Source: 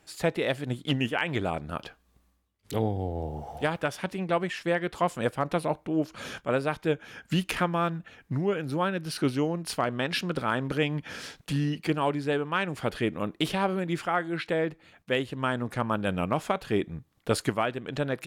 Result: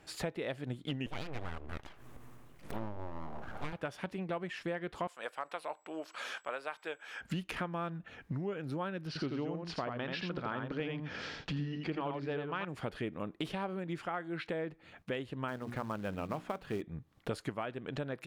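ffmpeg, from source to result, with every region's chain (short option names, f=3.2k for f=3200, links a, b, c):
-filter_complex "[0:a]asettb=1/sr,asplit=3[a][b][c];[a]atrim=end=1.064[d];[b]atrim=start=1.06:end=3.73,asetpts=PTS-STARTPTS,afade=t=in:d=0.004:c=qsin,afade=t=out:st=2.666:d=0.004:c=qsin,equalizer=f=4.3k:t=o:w=0.89:g=-9,acompressor=mode=upward:threshold=-38dB:ratio=2.5:attack=3.2:release=140:knee=2.83:detection=peak,aeval=exprs='abs(val(0))':c=same[e];[c]atrim=start=3.726[f];[d][e]acrossfade=d=0.004:c1=hsin:c2=qsin[g];[g][f]acrossfade=d=0.004:c1=qsin:c2=hsin,asettb=1/sr,asplit=3[h][i][j];[h]atrim=end=5.074[k];[i]atrim=start=5.07:end=7.21,asetpts=PTS-STARTPTS,afade=t=in:d=0.004:c=qsin,afade=t=out:st=2.136:d=0.004:c=qsin,highpass=780,aeval=exprs='val(0)+0.000631*sin(2*PI*7800*n/s)':c=same[l];[j]atrim=start=7.206[m];[k][l]acrossfade=d=0.004:c1=hsin:c2=qsin[n];[n][m]acrossfade=d=0.004:c1=qsin:c2=hsin,asettb=1/sr,asplit=3[o][p][q];[o]atrim=end=9.074[r];[p]atrim=start=9.07:end=12.65,asetpts=PTS-STARTPTS,afade=t=in:d=0.004:c=qsin,afade=t=out:st=3.576:d=0.004:c=qsin,lowpass=f=5.7k:w=0.5412,lowpass=f=5.7k:w=1.3066,aecho=1:1:84:0.596,atrim=end_sample=157878[s];[q]atrim=start=12.646[t];[r][s]acrossfade=d=0.004:c1=hsin:c2=qsin[u];[u][t]acrossfade=d=0.004:c1=qsin:c2=hsin,asettb=1/sr,asplit=3[v][w][x];[v]atrim=end=15.484[y];[w]atrim=start=15.48:end=16.82,asetpts=PTS-STARTPTS,afade=t=in:d=0.004:c=qsin,afade=t=out:st=1.336:d=0.004:c=qsin,bandreject=f=60:t=h:w=6,bandreject=f=120:t=h:w=6,bandreject=f=180:t=h:w=6,bandreject=f=240:t=h:w=6,bandreject=f=300:t=h:w=6,bandreject=f=360:t=h:w=6,acrossover=split=3000[z][aa];[aa]acompressor=threshold=-50dB:ratio=4:attack=1:release=60[ab];[z][ab]amix=inputs=2:normalize=0,acrusher=bits=4:mode=log:mix=0:aa=0.000001[ac];[x]atrim=start=16.816[ad];[y][ac]acrossfade=d=0.004:c1=hsin:c2=qsin[ae];[ae][ad]acrossfade=d=0.004:c1=qsin:c2=hsin,highshelf=f=5.1k:g=-9.5,acompressor=threshold=-42dB:ratio=3,volume=3dB"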